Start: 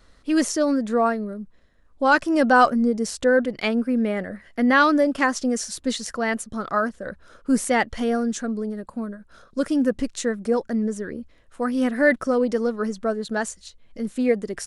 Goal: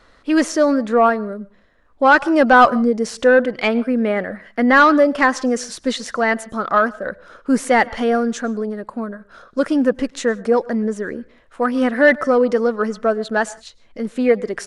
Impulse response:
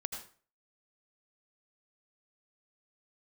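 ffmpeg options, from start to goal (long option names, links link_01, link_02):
-filter_complex "[0:a]asplit=2[link_01][link_02];[1:a]atrim=start_sample=2205,atrim=end_sample=6615,asetrate=34398,aresample=44100[link_03];[link_02][link_03]afir=irnorm=-1:irlink=0,volume=-19dB[link_04];[link_01][link_04]amix=inputs=2:normalize=0,asplit=2[link_05][link_06];[link_06]highpass=frequency=720:poles=1,volume=12dB,asoftclip=type=tanh:threshold=-3dB[link_07];[link_05][link_07]amix=inputs=2:normalize=0,lowpass=frequency=1700:poles=1,volume=-6dB,volume=3dB"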